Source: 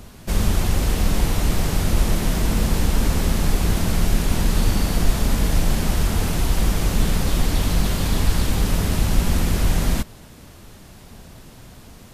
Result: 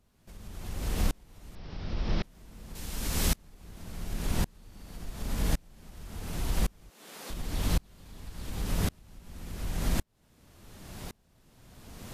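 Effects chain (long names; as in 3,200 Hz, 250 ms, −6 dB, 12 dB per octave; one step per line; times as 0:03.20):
0:01.55–0:02.23: Chebyshev low-pass filter 5,400 Hz, order 5
0:02.75–0:03.36: high-shelf EQ 2,100 Hz +10 dB
0:06.90–0:07.30: Bessel high-pass filter 420 Hz, order 4
downward compressor 3 to 1, threshold −29 dBFS, peak gain reduction 14.5 dB
tremolo with a ramp in dB swelling 0.9 Hz, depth 34 dB
level +5 dB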